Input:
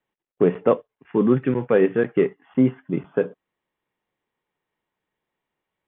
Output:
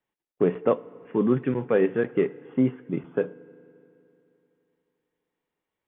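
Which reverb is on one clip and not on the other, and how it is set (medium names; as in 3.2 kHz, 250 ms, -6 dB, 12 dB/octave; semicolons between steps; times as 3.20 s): FDN reverb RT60 3 s, high-frequency decay 0.8×, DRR 19 dB; trim -4 dB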